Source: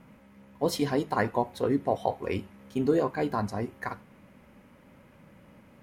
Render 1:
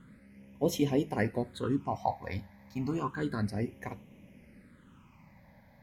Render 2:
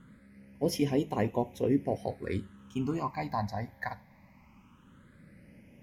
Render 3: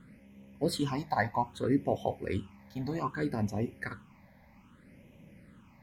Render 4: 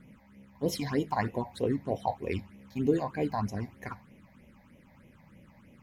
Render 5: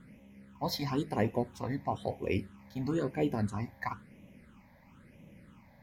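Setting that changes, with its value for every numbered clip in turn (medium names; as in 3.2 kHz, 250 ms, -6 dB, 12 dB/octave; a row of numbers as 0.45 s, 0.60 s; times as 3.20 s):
phase shifter, rate: 0.31 Hz, 0.2 Hz, 0.63 Hz, 3.2 Hz, 1 Hz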